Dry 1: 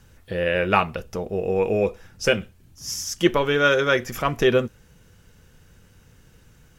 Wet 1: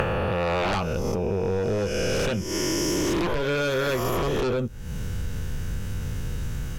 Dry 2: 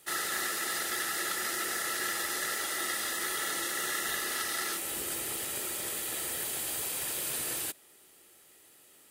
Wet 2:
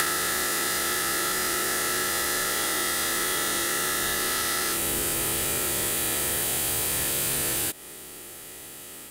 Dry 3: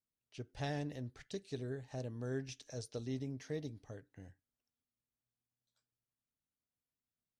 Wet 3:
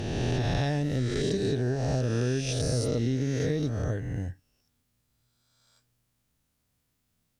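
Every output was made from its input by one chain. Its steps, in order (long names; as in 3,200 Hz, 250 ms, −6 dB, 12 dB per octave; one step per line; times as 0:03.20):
peak hold with a rise ahead of every peak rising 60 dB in 1.95 s
dynamic equaliser 1,900 Hz, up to −5 dB, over −33 dBFS, Q 0.87
sine wavefolder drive 14 dB, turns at 0.5 dBFS
low-shelf EQ 180 Hz +10 dB
downward compressor 8 to 1, threshold −19 dBFS
level −4.5 dB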